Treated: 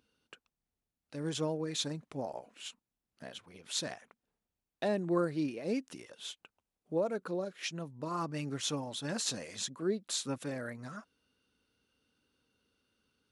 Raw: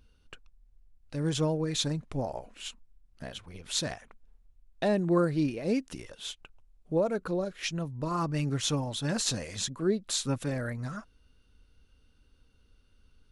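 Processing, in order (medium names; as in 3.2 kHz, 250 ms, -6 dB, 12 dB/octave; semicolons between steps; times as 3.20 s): high-pass 190 Hz 12 dB/octave; trim -4.5 dB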